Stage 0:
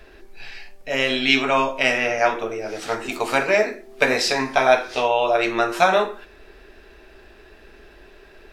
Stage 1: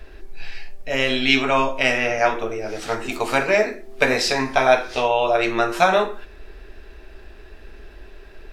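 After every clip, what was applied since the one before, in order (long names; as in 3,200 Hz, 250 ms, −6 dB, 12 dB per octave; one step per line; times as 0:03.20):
low-shelf EQ 93 Hz +11.5 dB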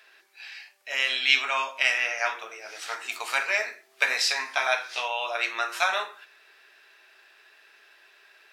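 high-pass filter 1,300 Hz 12 dB per octave
level −2 dB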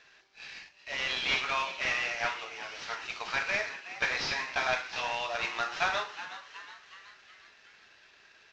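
variable-slope delta modulation 32 kbit/s
echo with shifted repeats 369 ms, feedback 54%, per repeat +140 Hz, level −13 dB
level −3.5 dB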